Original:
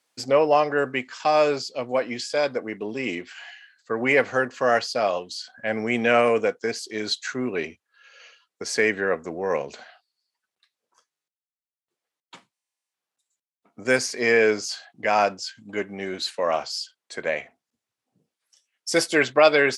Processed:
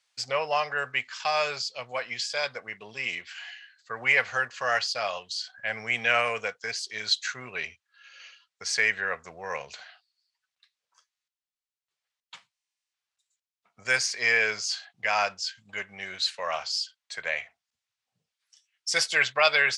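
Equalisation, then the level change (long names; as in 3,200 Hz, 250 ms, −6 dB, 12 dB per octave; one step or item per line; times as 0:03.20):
high-frequency loss of the air 110 metres
guitar amp tone stack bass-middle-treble 10-0-10
high-shelf EQ 9,300 Hz +10.5 dB
+5.5 dB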